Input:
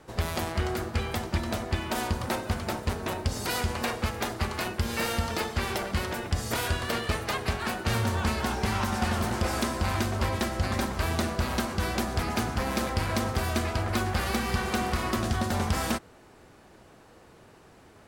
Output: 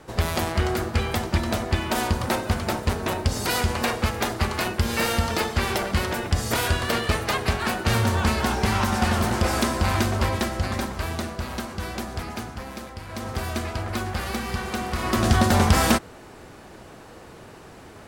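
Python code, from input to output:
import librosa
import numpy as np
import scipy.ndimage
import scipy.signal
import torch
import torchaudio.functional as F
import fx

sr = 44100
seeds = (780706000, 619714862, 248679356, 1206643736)

y = fx.gain(x, sr, db=fx.line((10.1, 5.5), (11.36, -2.5), (12.16, -2.5), (13.03, -10.0), (13.34, -0.5), (14.89, -0.5), (15.31, 9.5)))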